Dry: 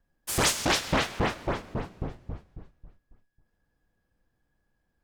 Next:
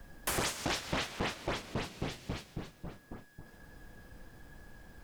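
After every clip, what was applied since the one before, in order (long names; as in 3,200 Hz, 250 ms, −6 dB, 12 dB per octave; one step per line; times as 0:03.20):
multiband upward and downward compressor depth 100%
level −7.5 dB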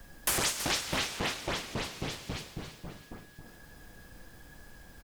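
high-shelf EQ 2,300 Hz +7.5 dB
repeating echo 328 ms, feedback 45%, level −12 dB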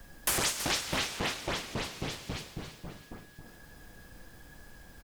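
no processing that can be heard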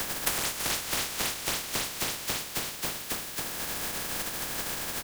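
compressing power law on the bin magnitudes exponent 0.28
multiband upward and downward compressor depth 100%
level +3.5 dB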